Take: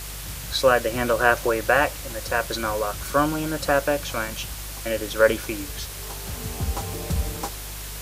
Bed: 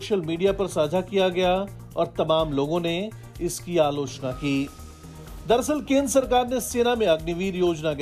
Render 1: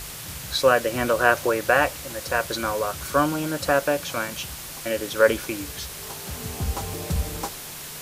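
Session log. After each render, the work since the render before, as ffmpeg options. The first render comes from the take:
-af "bandreject=f=50:t=h:w=4,bandreject=f=100:t=h:w=4"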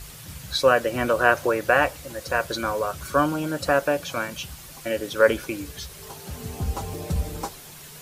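-af "afftdn=nr=8:nf=-37"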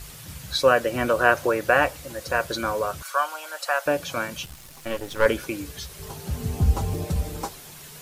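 -filter_complex "[0:a]asettb=1/sr,asplit=3[s0][s1][s2];[s0]atrim=end=3.024[s3];[s1]atrim=start=3.02:end=3.86,asetpts=PTS-STARTPTS,afade=t=in:d=0.004:c=qsin,afade=t=out:st=0.836:d=0.004:c=qsin,highpass=f=700:w=0.5412,highpass=f=700:w=1.3066[s4];[s2]atrim=start=3.856[s5];[s3][s4]acrossfade=d=0.004:c1=hsin:c2=qsin[s6];[s6][s5]acrossfade=d=0.004:c1=qsin:c2=hsin,asettb=1/sr,asplit=3[s7][s8][s9];[s7]atrim=end=4.454[s10];[s8]atrim=start=4.45:end=5.26,asetpts=PTS-STARTPTS,afade=t=in:d=0.004:c=qsin,afade=t=out:st=0.806:d=0.004:c=qsin,aeval=exprs='if(lt(val(0),0),0.251*val(0),val(0))':c=same[s11];[s9]atrim=start=5.256[s12];[s10][s11]acrossfade=d=0.004:c1=hsin:c2=qsin[s13];[s13][s12]acrossfade=d=0.004:c1=qsin:c2=hsin,asettb=1/sr,asplit=3[s14][s15][s16];[s14]atrim=end=5.994[s17];[s15]atrim=start=5.99:end=7.05,asetpts=PTS-STARTPTS,afade=t=in:d=0.004:c=qsin,afade=t=out:st=1.056:d=0.004:c=qsin,lowshelf=f=240:g=9[s18];[s16]atrim=start=7.046[s19];[s17][s18]acrossfade=d=0.004:c1=hsin:c2=qsin[s20];[s20][s19]acrossfade=d=0.004:c1=qsin:c2=hsin"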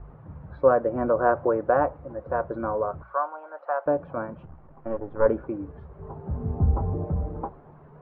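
-af "lowpass=f=1100:w=0.5412,lowpass=f=1100:w=1.3066,bandreject=f=60:t=h:w=6,bandreject=f=120:t=h:w=6,bandreject=f=180:t=h:w=6"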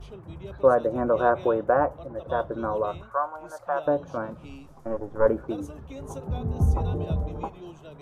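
-filter_complex "[1:a]volume=0.0891[s0];[0:a][s0]amix=inputs=2:normalize=0"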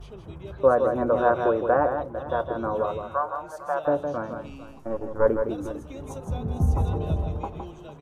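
-af "aecho=1:1:162|451:0.447|0.158"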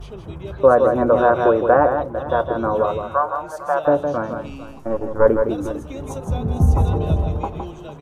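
-af "volume=2.24,alimiter=limit=0.794:level=0:latency=1"

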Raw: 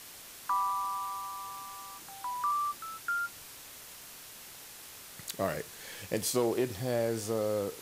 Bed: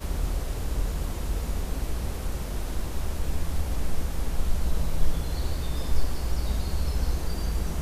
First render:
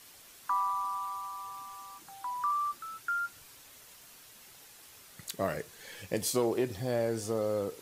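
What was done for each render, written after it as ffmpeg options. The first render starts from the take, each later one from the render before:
-af "afftdn=nr=7:nf=-49"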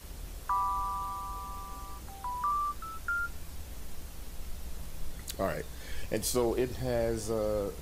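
-filter_complex "[1:a]volume=0.168[s0];[0:a][s0]amix=inputs=2:normalize=0"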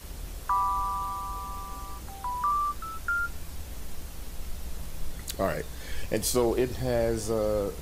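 -af "volume=1.58"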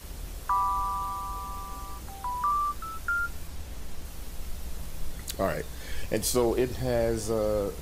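-filter_complex "[0:a]asettb=1/sr,asplit=3[s0][s1][s2];[s0]atrim=end=3.474[s3];[s1]atrim=start=3.47:end=4.05,asetpts=PTS-STARTPTS,afade=t=in:d=0.004:c=qsin,afade=t=out:st=0.576:d=0.004:c=qsin,highshelf=f=9700:g=-6[s4];[s2]atrim=start=4.046[s5];[s3][s4]acrossfade=d=0.004:c1=hsin:c2=qsin[s6];[s6][s5]acrossfade=d=0.004:c1=qsin:c2=hsin"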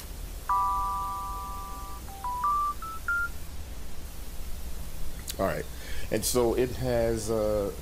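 -af "acompressor=mode=upward:threshold=0.0126:ratio=2.5"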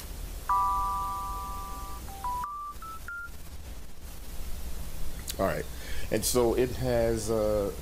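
-filter_complex "[0:a]asplit=3[s0][s1][s2];[s0]afade=t=out:st=2.43:d=0.02[s3];[s1]acompressor=threshold=0.0178:ratio=12:attack=3.2:release=140:knee=1:detection=peak,afade=t=in:st=2.43:d=0.02,afade=t=out:st=4.27:d=0.02[s4];[s2]afade=t=in:st=4.27:d=0.02[s5];[s3][s4][s5]amix=inputs=3:normalize=0"

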